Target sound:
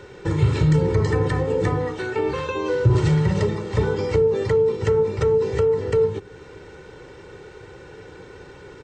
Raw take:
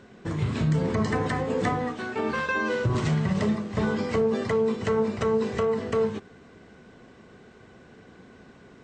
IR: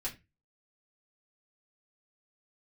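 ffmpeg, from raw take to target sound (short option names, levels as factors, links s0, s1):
-filter_complex "[0:a]aecho=1:1:2.2:0.93,acrossover=split=360[s0][s1];[s1]acompressor=threshold=0.0126:ratio=2.5[s2];[s0][s2]amix=inputs=2:normalize=0,volume=2.24"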